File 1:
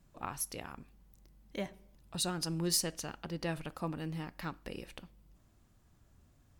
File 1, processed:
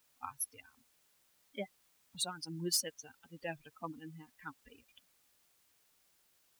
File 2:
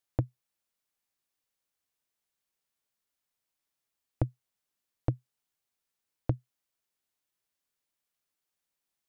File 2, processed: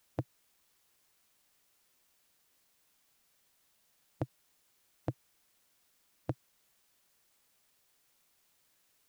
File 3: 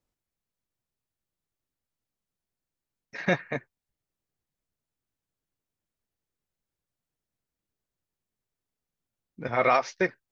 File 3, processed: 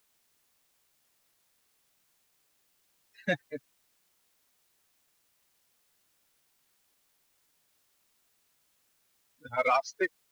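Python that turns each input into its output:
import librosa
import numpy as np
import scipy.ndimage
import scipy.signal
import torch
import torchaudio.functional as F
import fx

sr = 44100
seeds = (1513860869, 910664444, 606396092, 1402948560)

p1 = fx.bin_expand(x, sr, power=3.0)
p2 = fx.highpass(p1, sr, hz=280.0, slope=6)
p3 = np.clip(10.0 ** (31.0 / 20.0) * p2, -1.0, 1.0) / 10.0 ** (31.0 / 20.0)
p4 = p2 + (p3 * librosa.db_to_amplitude(-10.0))
y = fx.quant_dither(p4, sr, seeds[0], bits=12, dither='triangular')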